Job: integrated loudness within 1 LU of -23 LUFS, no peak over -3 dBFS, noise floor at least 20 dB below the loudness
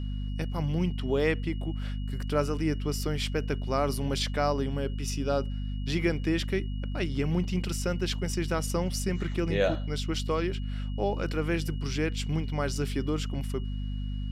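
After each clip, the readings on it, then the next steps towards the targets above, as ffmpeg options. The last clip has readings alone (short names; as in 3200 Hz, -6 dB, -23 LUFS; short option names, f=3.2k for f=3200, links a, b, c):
hum 50 Hz; harmonics up to 250 Hz; hum level -30 dBFS; steady tone 2900 Hz; tone level -52 dBFS; loudness -30.5 LUFS; peak -13.5 dBFS; loudness target -23.0 LUFS
-> -af "bandreject=f=50:t=h:w=6,bandreject=f=100:t=h:w=6,bandreject=f=150:t=h:w=6,bandreject=f=200:t=h:w=6,bandreject=f=250:t=h:w=6"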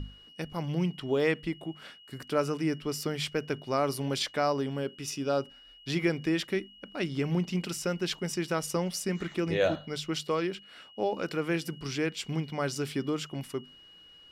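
hum none; steady tone 2900 Hz; tone level -52 dBFS
-> -af "bandreject=f=2.9k:w=30"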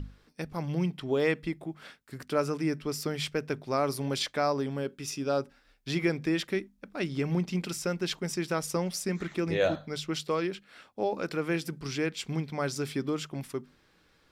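steady tone none; loudness -31.5 LUFS; peak -14.5 dBFS; loudness target -23.0 LUFS
-> -af "volume=8.5dB"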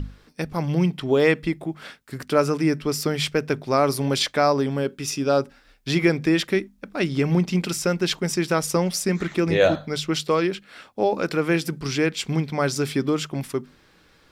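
loudness -23.0 LUFS; peak -6.0 dBFS; noise floor -57 dBFS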